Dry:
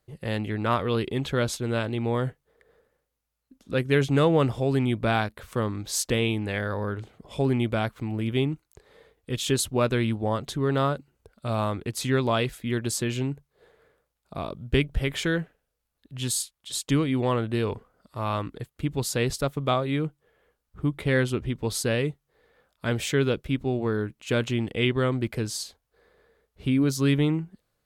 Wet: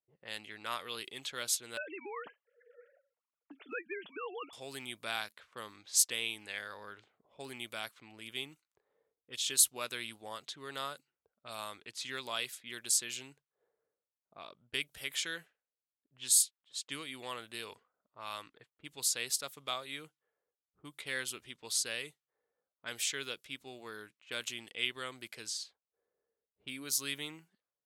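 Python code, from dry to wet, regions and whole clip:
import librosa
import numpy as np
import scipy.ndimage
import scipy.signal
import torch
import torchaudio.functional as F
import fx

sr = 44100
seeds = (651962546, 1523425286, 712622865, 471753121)

y = fx.chain(x, sr, fx.sine_speech(),
    fx.notch_comb(f0_hz=260.0),
    fx.band_squash(depth_pct=100), at=(1.77, 4.53))
y = fx.env_lowpass(y, sr, base_hz=460.0, full_db=-23.0)
y = np.diff(y, prepend=0.0)
y = F.gain(torch.from_numpy(y), 3.0).numpy()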